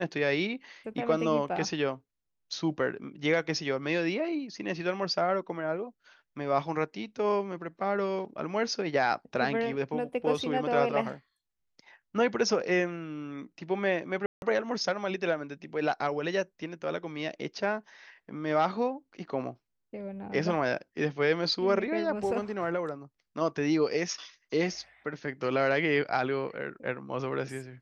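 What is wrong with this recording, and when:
14.26–14.42 gap 0.161 s

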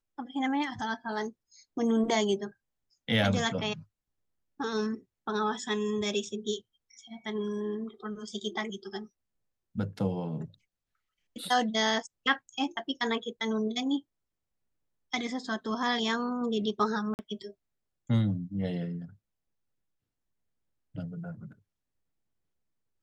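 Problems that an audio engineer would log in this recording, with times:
17.14–17.19 gap 49 ms

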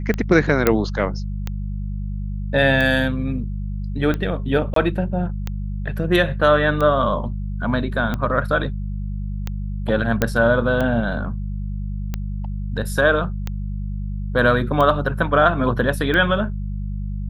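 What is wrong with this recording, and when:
hum 50 Hz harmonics 4 -26 dBFS
tick 45 rpm -12 dBFS
0.67 pop -2 dBFS
4.74–4.76 gap 23 ms
10.22 pop -4 dBFS

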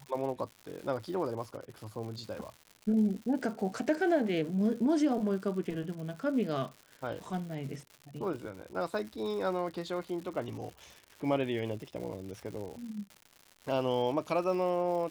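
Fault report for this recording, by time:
crackle 200/s -41 dBFS

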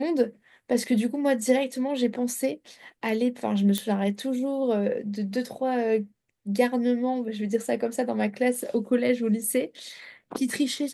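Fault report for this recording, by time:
3.78 pop -10 dBFS

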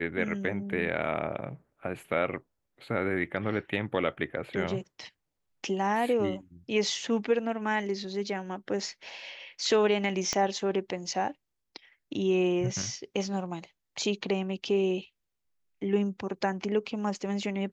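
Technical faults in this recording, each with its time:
10.33 pop -14 dBFS

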